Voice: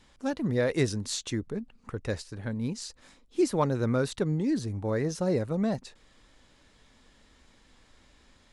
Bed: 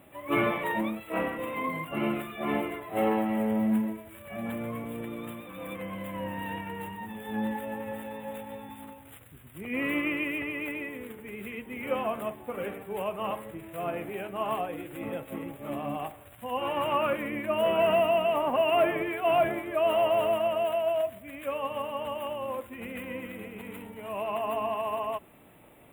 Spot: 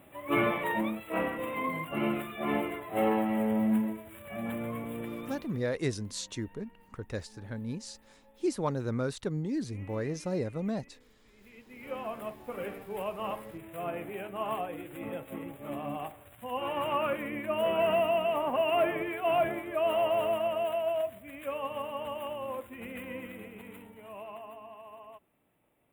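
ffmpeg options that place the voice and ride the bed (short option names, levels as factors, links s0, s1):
-filter_complex "[0:a]adelay=5050,volume=0.562[s0];[1:a]volume=10,afade=t=out:st=5.16:d=0.5:silence=0.0707946,afade=t=in:st=11.34:d=1.22:silence=0.0891251,afade=t=out:st=23.21:d=1.37:silence=0.188365[s1];[s0][s1]amix=inputs=2:normalize=0"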